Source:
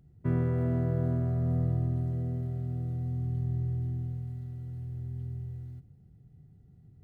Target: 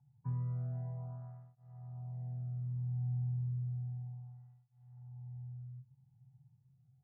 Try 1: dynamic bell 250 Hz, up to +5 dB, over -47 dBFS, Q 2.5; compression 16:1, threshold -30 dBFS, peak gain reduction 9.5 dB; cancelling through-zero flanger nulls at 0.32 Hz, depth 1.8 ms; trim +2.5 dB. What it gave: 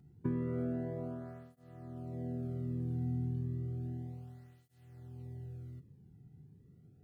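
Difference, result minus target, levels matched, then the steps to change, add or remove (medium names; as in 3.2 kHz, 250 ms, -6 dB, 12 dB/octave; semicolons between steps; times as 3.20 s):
250 Hz band +10.0 dB
add after dynamic bell: two resonant band-passes 330 Hz, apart 2.8 oct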